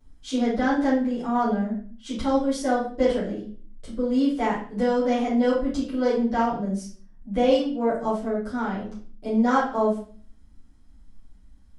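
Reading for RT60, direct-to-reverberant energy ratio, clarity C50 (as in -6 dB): 0.45 s, -11.5 dB, 4.0 dB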